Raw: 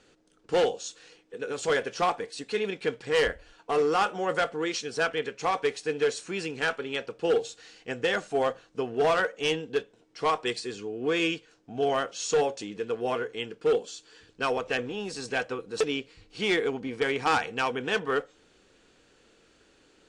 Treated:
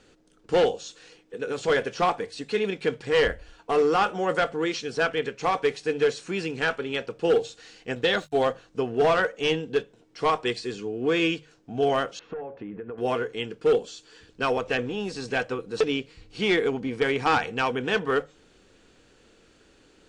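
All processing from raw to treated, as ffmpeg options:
-filter_complex "[0:a]asettb=1/sr,asplit=3[a][b][c];[a]atrim=end=7.954[d];[b]atrim=start=7.95:end=8.45,asetpts=PTS-STARTPTS,afade=t=in:d=0.004:c=qsin,afade=t=out:st=0.496:d=0.004:c=qsin,agate=range=-33dB:threshold=-41dB:ratio=3:release=100:detection=peak,equalizer=f=3.8k:w=4.6:g=13.5,aeval=exprs='sgn(val(0))*max(abs(val(0))-0.00119,0)':c=same[e];[c]atrim=start=8.446[f];[d][e]acrossfade=d=0.004:c1=hsin:c2=qsin[g];[g][f]acrossfade=d=0.004:c1=qsin:c2=hsin,asettb=1/sr,asplit=3[h][i][j];[h]atrim=end=12.194[k];[i]atrim=start=12.19:end=12.98,asetpts=PTS-STARTPTS,afade=t=in:d=0.004:c=qsin,afade=t=out:st=0.786:d=0.004:c=qsin,lowpass=f=1.9k:w=0.5412,lowpass=f=1.9k:w=1.3066,acompressor=threshold=-36dB:ratio=8:attack=3.2:release=140:knee=1:detection=peak[l];[j]atrim=start=12.976[m];[k][l]acrossfade=d=0.004:c1=hsin:c2=qsin[n];[n][m]acrossfade=d=0.004:c1=qsin:c2=hsin,lowshelf=f=210:g=6.5,acrossover=split=5500[o][p];[p]acompressor=threshold=-51dB:ratio=4:attack=1:release=60[q];[o][q]amix=inputs=2:normalize=0,bandreject=f=50:t=h:w=6,bandreject=f=100:t=h:w=6,bandreject=f=150:t=h:w=6,volume=2dB"

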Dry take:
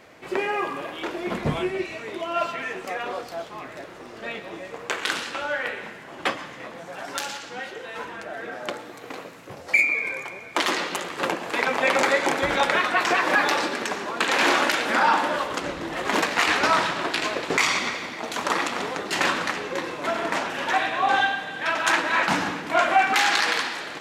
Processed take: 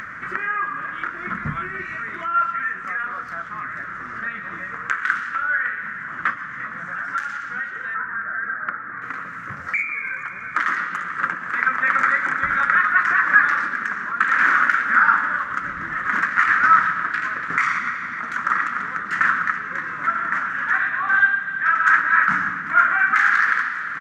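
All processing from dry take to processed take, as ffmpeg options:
-filter_complex "[0:a]asettb=1/sr,asplit=3[a][b][c];[a]atrim=end=7.944[d];[b]atrim=start=7.94:end=9.02,asetpts=PTS-STARTPTS,afade=t=in:d=0.004:c=qsin,afade=t=out:st=1.076:d=0.004:c=qsin,lowpass=f=4.9k:w=0.5412,lowpass=f=4.9k:w=1.3066,highshelf=f=2.4k:t=q:w=1.5:g=-10.5[e];[c]atrim=start=9.016[f];[d][e]acrossfade=d=0.004:c1=hsin:c2=qsin[g];[g][f]acrossfade=d=0.004:c1=qsin:c2=hsin,firequalizer=gain_entry='entry(200,0);entry(370,-15);entry(810,-14);entry(1300,13);entry(1800,10);entry(2600,-10);entry(4100,-17);entry(6100,-11);entry(10000,-19)':delay=0.05:min_phase=1,acompressor=mode=upward:threshold=-19dB:ratio=2.5,volume=-2.5dB"

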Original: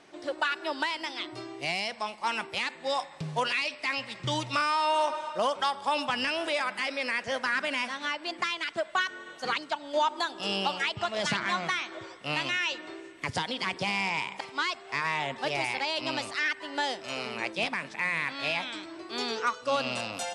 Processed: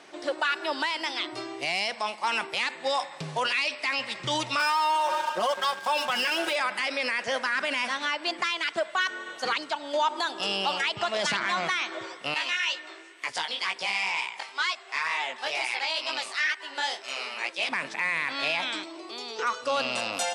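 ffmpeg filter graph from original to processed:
-filter_complex "[0:a]asettb=1/sr,asplit=3[a][b][c];[a]atrim=end=4.594[d];[b]atrim=start=4.59:end=6.56,asetpts=PTS-STARTPTS,afade=t=in:d=0.004:c=qsin,afade=t=out:st=1.966:d=0.004:c=qsin,aecho=1:1:5.5:0.99,atrim=end_sample=86877,aeval=exprs='sgn(val(0))*max(abs(val(0))-0.00944,0)':c=same,aeval=exprs='val(0)+0.00501*sin(2*PI*1600*n/s)':c=same[e];[c]atrim=start=6.556[f];[d][e]acrossfade=d=0.004:c1=hsin:c2=qsin[g];[g][f]acrossfade=d=0.004:c1=qsin:c2=hsin,asettb=1/sr,asplit=3[h][i][j];[h]atrim=end=12.344[k];[i]atrim=start=12.34:end=17.69,asetpts=PTS-STARTPTS,afade=t=in:d=0.004:c=qsin,afade=t=out:st=5.346:d=0.004:c=qsin,flanger=delay=15.5:depth=6.4:speed=2.1,highpass=f=980:p=1[l];[j]atrim=start=17.686[m];[k][l]acrossfade=d=0.004:c1=hsin:c2=qsin[n];[n][m]acrossfade=d=0.004:c1=qsin:c2=hsin,asettb=1/sr,asplit=3[o][p][q];[o]atrim=end=18.834[r];[p]atrim=start=18.83:end=19.39,asetpts=PTS-STARTPTS,afade=t=in:d=0.004:c=qsin,afade=t=out:st=0.556:d=0.004:c=qsin,highpass=240,equalizer=f=1.6k:w=2.8:g=-11.5,acompressor=threshold=-41dB:ratio=4:attack=3.2:release=140:knee=1:detection=peak[s];[q]atrim=start=19.386[t];[r][s]acrossfade=d=0.004:c1=hsin:c2=qsin[u];[u][t]acrossfade=d=0.004:c1=qsin:c2=hsin,alimiter=limit=-23.5dB:level=0:latency=1:release=24,highpass=f=380:p=1,volume=6.5dB"

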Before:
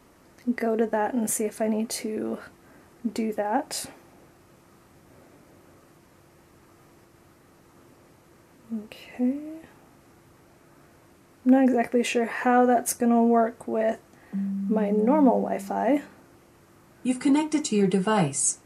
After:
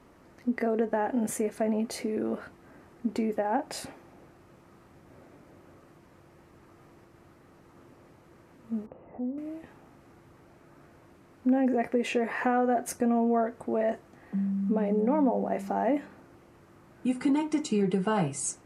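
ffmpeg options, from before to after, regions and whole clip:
-filter_complex "[0:a]asettb=1/sr,asplit=3[a][b][c];[a]atrim=end=8.864[d];[b]atrim=start=8.86:end=9.38,asetpts=PTS-STARTPTS,afade=t=in:d=0.004:c=qsin,afade=t=out:st=0.516:d=0.004:c=qsin,lowpass=f=1.2k:w=0.5412,lowpass=f=1.2k:w=1.3066,acompressor=threshold=-36dB:ratio=2:attack=3.2:release=140:knee=1:detection=peak[e];[c]atrim=start=9.376[f];[d][e]acrossfade=d=0.004:c1=hsin:c2=qsin[g];[g][f]acrossfade=d=0.004:c1=qsin:c2=hsin,highshelf=f=4.1k:g=-10.5,acompressor=threshold=-24dB:ratio=2.5"

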